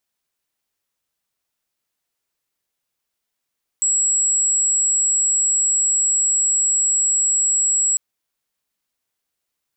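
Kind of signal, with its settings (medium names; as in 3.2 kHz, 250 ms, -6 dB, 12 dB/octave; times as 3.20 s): tone sine 7.73 kHz -15 dBFS 4.15 s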